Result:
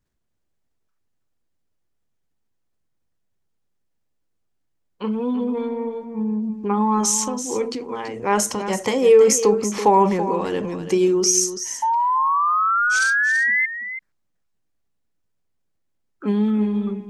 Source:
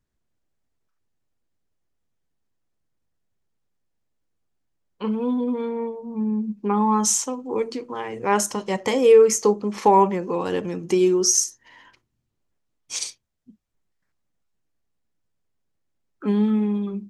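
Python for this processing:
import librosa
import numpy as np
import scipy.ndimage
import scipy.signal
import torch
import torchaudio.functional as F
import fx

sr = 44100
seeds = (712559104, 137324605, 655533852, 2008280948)

y = fx.transient(x, sr, attack_db=1, sustain_db=6)
y = fx.spec_paint(y, sr, seeds[0], shape='rise', start_s=11.82, length_s=1.84, low_hz=880.0, high_hz=2100.0, level_db=-19.0)
y = y + 10.0 ** (-11.0 / 20.0) * np.pad(y, (int(332 * sr / 1000.0), 0))[:len(y)]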